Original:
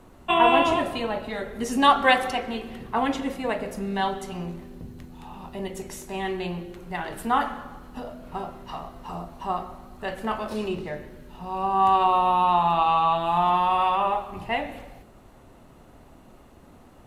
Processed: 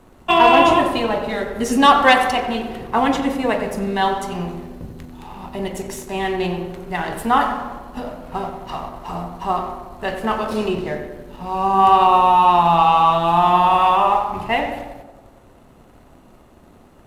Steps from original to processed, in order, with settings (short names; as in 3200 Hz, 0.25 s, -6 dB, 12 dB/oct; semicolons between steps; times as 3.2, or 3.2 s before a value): sample leveller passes 1; on a send: tape echo 92 ms, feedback 69%, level -6.5 dB, low-pass 1500 Hz; on the sum: gain +3 dB